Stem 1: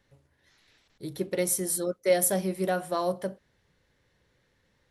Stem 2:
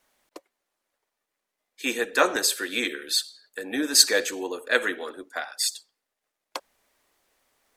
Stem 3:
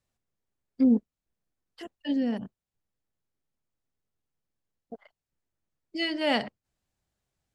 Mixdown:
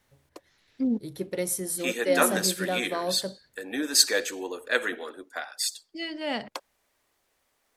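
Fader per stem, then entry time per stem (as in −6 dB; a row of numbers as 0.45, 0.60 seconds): −2.0, −3.0, −5.0 decibels; 0.00, 0.00, 0.00 seconds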